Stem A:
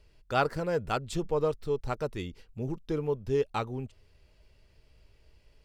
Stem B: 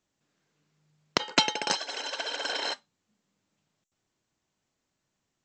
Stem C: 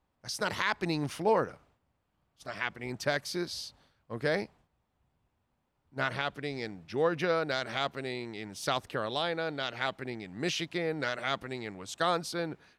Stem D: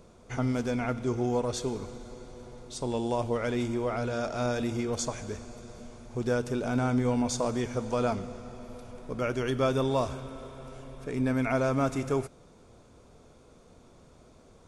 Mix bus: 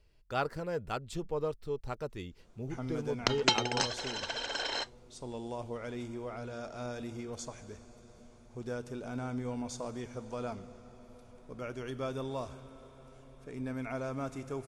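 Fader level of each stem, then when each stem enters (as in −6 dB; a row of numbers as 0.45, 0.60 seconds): −6.0 dB, −3.5 dB, muted, −10.5 dB; 0.00 s, 2.10 s, muted, 2.40 s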